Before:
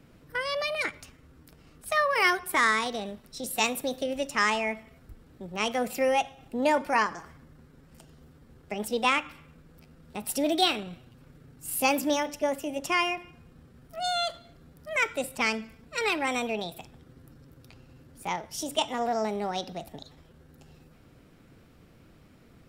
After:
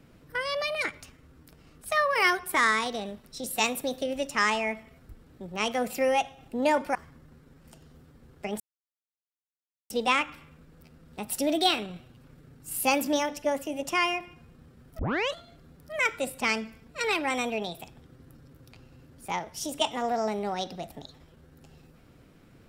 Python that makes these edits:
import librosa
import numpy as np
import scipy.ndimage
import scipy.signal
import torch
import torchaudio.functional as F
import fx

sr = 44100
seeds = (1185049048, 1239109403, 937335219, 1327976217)

y = fx.edit(x, sr, fx.cut(start_s=6.95, length_s=0.27),
    fx.insert_silence(at_s=8.87, length_s=1.3),
    fx.tape_start(start_s=13.96, length_s=0.36), tone=tone)